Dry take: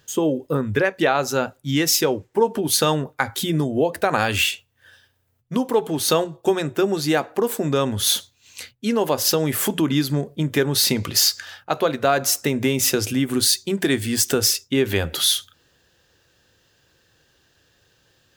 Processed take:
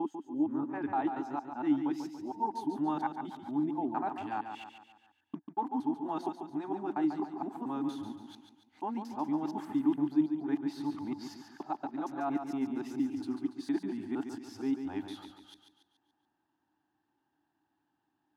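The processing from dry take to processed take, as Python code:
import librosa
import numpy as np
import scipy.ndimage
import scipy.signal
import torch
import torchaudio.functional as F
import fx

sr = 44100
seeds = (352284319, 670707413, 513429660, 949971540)

y = fx.local_reverse(x, sr, ms=232.0)
y = fx.double_bandpass(y, sr, hz=500.0, octaves=1.5)
y = fx.echo_feedback(y, sr, ms=142, feedback_pct=46, wet_db=-7.5)
y = F.gain(torch.from_numpy(y), -4.0).numpy()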